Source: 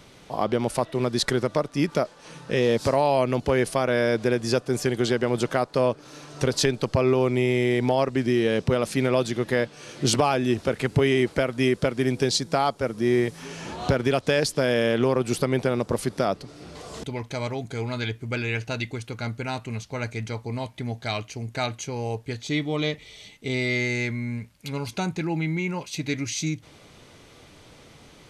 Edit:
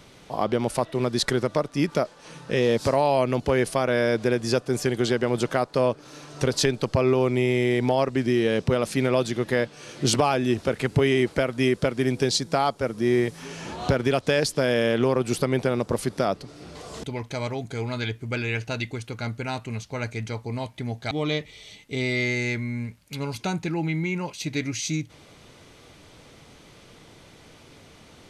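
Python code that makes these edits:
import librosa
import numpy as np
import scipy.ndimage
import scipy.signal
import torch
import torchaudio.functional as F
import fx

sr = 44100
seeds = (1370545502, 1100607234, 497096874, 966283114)

y = fx.edit(x, sr, fx.cut(start_s=21.11, length_s=1.53), tone=tone)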